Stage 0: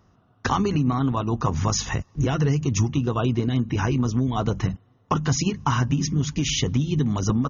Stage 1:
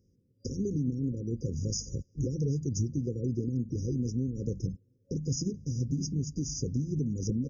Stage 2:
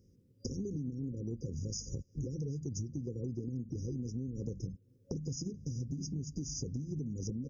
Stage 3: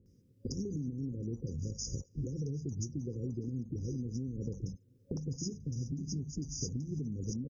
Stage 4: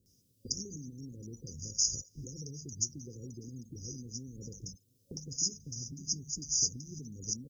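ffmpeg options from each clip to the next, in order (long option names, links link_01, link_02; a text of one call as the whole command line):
ffmpeg -i in.wav -af "afftfilt=real='re*(1-between(b*sr/4096,550,4800))':imag='im*(1-between(b*sr/4096,550,4800))':win_size=4096:overlap=0.75,volume=-8.5dB" out.wav
ffmpeg -i in.wav -af "acompressor=threshold=-40dB:ratio=5,volume=3.5dB" out.wav
ffmpeg -i in.wav -filter_complex "[0:a]acrossover=split=680[link_01][link_02];[link_02]adelay=60[link_03];[link_01][link_03]amix=inputs=2:normalize=0,volume=1dB" out.wav
ffmpeg -i in.wav -af "aexciter=amount=10:drive=2.9:freq=2900,volume=-8dB" out.wav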